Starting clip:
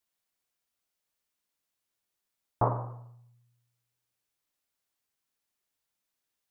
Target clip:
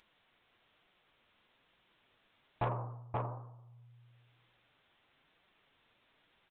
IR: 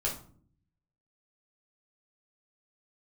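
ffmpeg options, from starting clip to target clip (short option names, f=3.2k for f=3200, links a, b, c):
-af "aecho=1:1:529:0.631,acompressor=mode=upward:threshold=-42dB:ratio=2.5,aresample=8000,asoftclip=type=tanh:threshold=-23dB,aresample=44100,flanger=delay=5.1:depth=4.3:regen=-44:speed=1.1:shape=triangular"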